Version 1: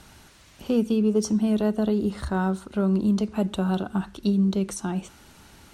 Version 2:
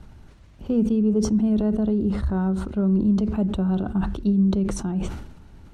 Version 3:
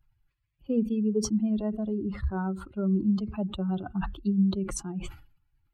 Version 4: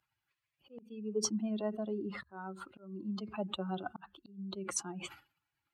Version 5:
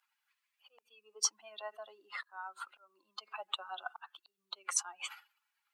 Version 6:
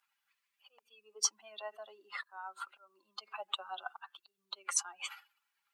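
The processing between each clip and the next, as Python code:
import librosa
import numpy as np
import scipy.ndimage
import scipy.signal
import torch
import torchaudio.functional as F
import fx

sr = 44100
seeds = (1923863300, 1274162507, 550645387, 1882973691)

y1 = fx.tilt_eq(x, sr, slope=-3.5)
y1 = fx.sustainer(y1, sr, db_per_s=57.0)
y1 = F.gain(torch.from_numpy(y1), -6.0).numpy()
y2 = fx.bin_expand(y1, sr, power=2.0)
y2 = fx.tilt_shelf(y2, sr, db=-3.0, hz=720.0)
y3 = fx.auto_swell(y2, sr, attack_ms=530.0)
y3 = fx.weighting(y3, sr, curve='A')
y3 = F.gain(torch.from_numpy(y3), 1.0).numpy()
y4 = scipy.signal.sosfilt(scipy.signal.butter(4, 870.0, 'highpass', fs=sr, output='sos'), y3)
y4 = F.gain(torch.from_numpy(y4), 4.0).numpy()
y5 = y4 + 0.32 * np.pad(y4, (int(5.1 * sr / 1000.0), 0))[:len(y4)]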